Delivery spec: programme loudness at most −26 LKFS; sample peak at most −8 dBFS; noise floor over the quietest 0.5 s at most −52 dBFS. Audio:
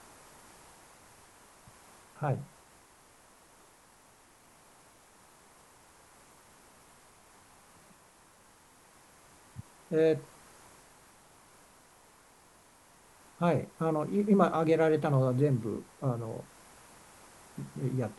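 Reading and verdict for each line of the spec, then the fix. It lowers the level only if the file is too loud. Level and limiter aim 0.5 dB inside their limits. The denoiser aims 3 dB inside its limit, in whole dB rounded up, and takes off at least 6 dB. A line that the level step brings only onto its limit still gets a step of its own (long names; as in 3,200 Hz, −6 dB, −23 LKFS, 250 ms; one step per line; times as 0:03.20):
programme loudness −30.0 LKFS: in spec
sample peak −10.0 dBFS: in spec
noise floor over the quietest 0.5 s −60 dBFS: in spec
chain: no processing needed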